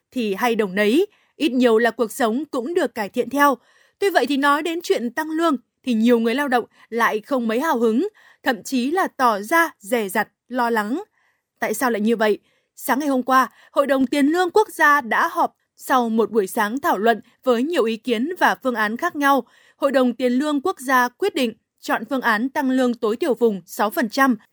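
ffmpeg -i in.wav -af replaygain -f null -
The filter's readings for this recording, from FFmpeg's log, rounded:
track_gain = +0.3 dB
track_peak = 0.565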